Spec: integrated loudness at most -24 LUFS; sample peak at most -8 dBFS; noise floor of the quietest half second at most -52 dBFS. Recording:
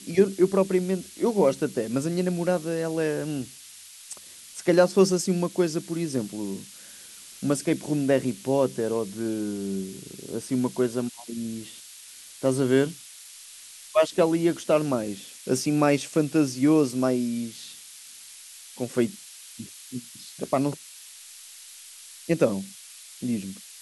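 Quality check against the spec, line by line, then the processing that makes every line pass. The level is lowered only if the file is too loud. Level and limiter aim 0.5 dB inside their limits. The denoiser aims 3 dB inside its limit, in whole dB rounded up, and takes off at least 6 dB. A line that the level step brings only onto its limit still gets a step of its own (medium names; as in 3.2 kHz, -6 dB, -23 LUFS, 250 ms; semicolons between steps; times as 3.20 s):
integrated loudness -25.5 LUFS: pass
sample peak -6.5 dBFS: fail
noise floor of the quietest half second -46 dBFS: fail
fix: noise reduction 9 dB, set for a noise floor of -46 dBFS; peak limiter -8.5 dBFS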